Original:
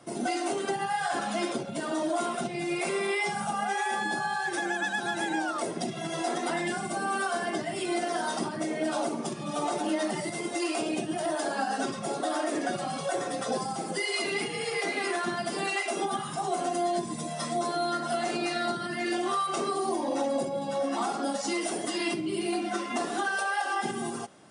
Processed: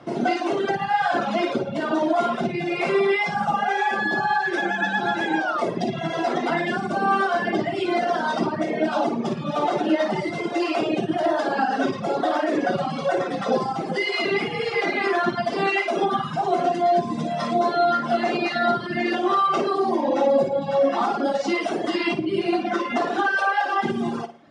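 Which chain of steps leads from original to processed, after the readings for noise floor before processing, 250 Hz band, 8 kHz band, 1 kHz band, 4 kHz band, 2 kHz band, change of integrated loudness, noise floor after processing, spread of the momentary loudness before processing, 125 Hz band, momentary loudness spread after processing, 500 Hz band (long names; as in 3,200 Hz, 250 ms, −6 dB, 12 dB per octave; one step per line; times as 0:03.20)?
−37 dBFS, +7.0 dB, can't be measured, +8.0 dB, +3.5 dB, +7.0 dB, +7.5 dB, −30 dBFS, 3 LU, +8.0 dB, 4 LU, +8.5 dB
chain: high-frequency loss of the air 200 metres
flutter between parallel walls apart 9.6 metres, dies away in 0.57 s
reverb reduction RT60 0.77 s
level +9 dB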